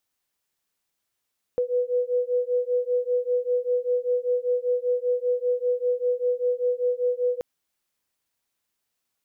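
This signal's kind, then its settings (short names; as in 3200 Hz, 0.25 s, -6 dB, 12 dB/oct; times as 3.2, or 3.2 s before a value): beating tones 491 Hz, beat 5.1 Hz, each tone -24.5 dBFS 5.83 s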